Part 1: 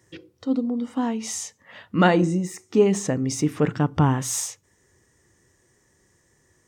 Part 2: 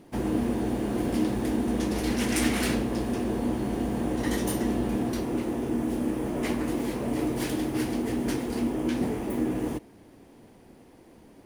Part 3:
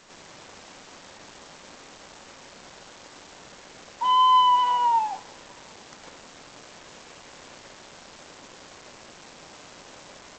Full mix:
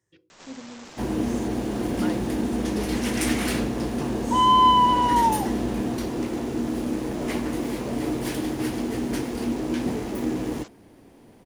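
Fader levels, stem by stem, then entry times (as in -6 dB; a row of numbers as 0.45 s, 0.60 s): -17.0 dB, +1.0 dB, +1.0 dB; 0.00 s, 0.85 s, 0.30 s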